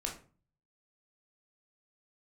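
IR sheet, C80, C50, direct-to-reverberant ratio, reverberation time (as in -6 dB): 14.0 dB, 8.5 dB, -0.5 dB, 0.40 s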